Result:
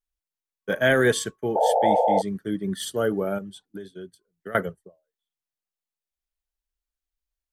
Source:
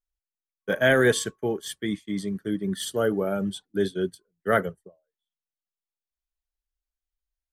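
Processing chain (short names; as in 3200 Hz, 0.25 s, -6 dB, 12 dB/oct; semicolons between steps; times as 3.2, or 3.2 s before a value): 1.55–2.22 painted sound noise 440–910 Hz -20 dBFS; 3.38–4.55 compressor 12:1, threshold -35 dBFS, peak gain reduction 18 dB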